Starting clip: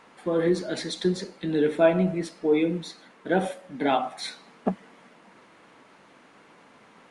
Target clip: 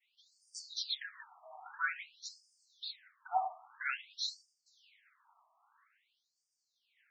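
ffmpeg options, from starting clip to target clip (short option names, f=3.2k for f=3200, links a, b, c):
-af "agate=range=-33dB:threshold=-45dB:ratio=3:detection=peak,afftfilt=real='re*between(b*sr/1024,880*pow(6600/880,0.5+0.5*sin(2*PI*0.5*pts/sr))/1.41,880*pow(6600/880,0.5+0.5*sin(2*PI*0.5*pts/sr))*1.41)':imag='im*between(b*sr/1024,880*pow(6600/880,0.5+0.5*sin(2*PI*0.5*pts/sr))/1.41,880*pow(6600/880,0.5+0.5*sin(2*PI*0.5*pts/sr))*1.41)':win_size=1024:overlap=0.75,volume=-1dB"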